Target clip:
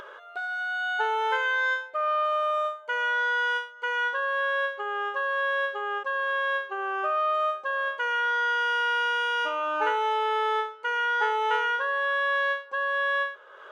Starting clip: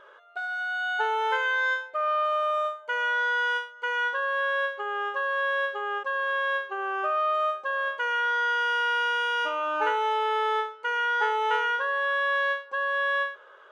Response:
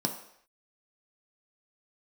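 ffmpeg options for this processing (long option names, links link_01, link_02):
-af "acompressor=mode=upward:threshold=-36dB:ratio=2.5"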